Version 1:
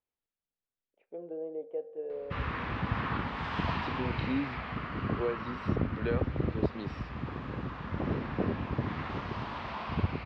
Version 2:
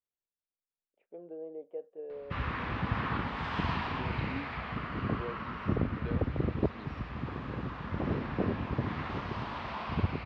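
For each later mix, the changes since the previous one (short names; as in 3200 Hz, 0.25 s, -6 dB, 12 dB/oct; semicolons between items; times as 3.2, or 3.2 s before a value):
first voice: send off; second voice -9.0 dB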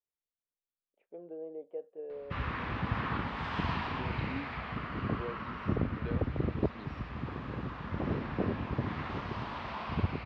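background: send off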